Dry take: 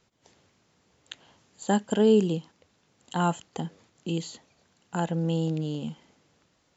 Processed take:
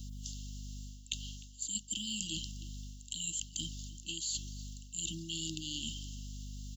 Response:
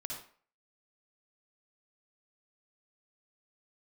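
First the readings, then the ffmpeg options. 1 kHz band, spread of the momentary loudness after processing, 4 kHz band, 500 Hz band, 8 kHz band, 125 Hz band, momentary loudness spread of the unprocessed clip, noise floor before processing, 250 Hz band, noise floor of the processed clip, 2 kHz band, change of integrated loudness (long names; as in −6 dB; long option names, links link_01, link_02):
below −40 dB, 11 LU, +3.5 dB, below −30 dB, can't be measured, −13.5 dB, 21 LU, −69 dBFS, −18.5 dB, −53 dBFS, −9.5 dB, −12.0 dB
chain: -filter_complex "[0:a]aderivative,asplit=2[link_01][link_02];[link_02]acrusher=bits=5:mode=log:mix=0:aa=0.000001,volume=-9dB[link_03];[link_01][link_03]amix=inputs=2:normalize=0,afftfilt=real='re*(1-between(b*sr/4096,340,2700))':imag='im*(1-between(b*sr/4096,340,2700))':win_size=4096:overlap=0.75,aeval=exprs='val(0)+0.000891*(sin(2*PI*50*n/s)+sin(2*PI*2*50*n/s)/2+sin(2*PI*3*50*n/s)/3+sin(2*PI*4*50*n/s)/4+sin(2*PI*5*50*n/s)/5)':channel_layout=same,areverse,acompressor=threshold=-54dB:ratio=6,areverse,asplit=2[link_04][link_05];[link_05]adelay=303.2,volume=-18dB,highshelf=frequency=4000:gain=-6.82[link_06];[link_04][link_06]amix=inputs=2:normalize=0,volume=18dB"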